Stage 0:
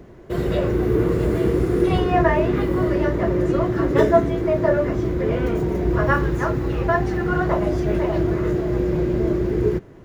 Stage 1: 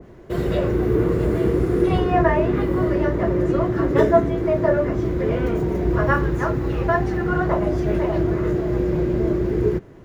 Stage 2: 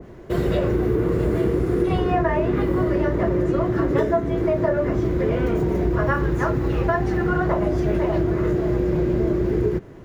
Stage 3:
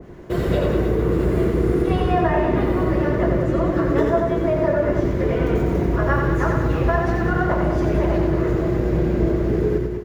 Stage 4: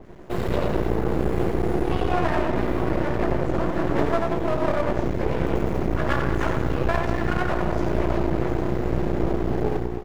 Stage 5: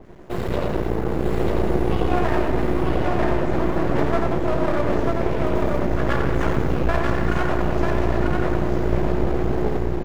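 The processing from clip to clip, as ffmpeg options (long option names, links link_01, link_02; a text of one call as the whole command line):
ffmpeg -i in.wav -af "adynamicequalizer=threshold=0.02:dfrequency=2300:dqfactor=0.7:tfrequency=2300:tqfactor=0.7:attack=5:release=100:ratio=0.375:range=2.5:mode=cutabove:tftype=highshelf" out.wav
ffmpeg -i in.wav -af "acompressor=threshold=-19dB:ratio=6,volume=2.5dB" out.wav
ffmpeg -i in.wav -af "aecho=1:1:90|193.5|312.5|449.4|606.8:0.631|0.398|0.251|0.158|0.1" out.wav
ffmpeg -i in.wav -af "aeval=exprs='max(val(0),0)':channel_layout=same" out.wav
ffmpeg -i in.wav -af "aecho=1:1:943:0.708" out.wav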